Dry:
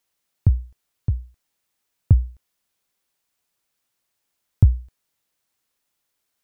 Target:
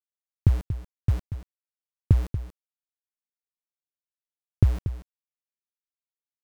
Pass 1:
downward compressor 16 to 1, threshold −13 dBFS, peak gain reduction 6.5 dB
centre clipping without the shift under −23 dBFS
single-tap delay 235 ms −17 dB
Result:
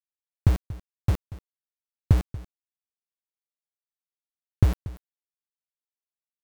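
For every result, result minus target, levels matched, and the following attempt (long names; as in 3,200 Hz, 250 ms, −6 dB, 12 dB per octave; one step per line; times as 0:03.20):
centre clipping without the shift: distortion +8 dB; echo-to-direct −6 dB
downward compressor 16 to 1, threshold −13 dBFS, peak gain reduction 6.5 dB
centre clipping without the shift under −30.5 dBFS
single-tap delay 235 ms −17 dB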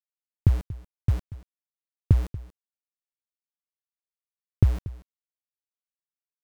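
echo-to-direct −6 dB
downward compressor 16 to 1, threshold −13 dBFS, peak gain reduction 6.5 dB
centre clipping without the shift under −30.5 dBFS
single-tap delay 235 ms −11 dB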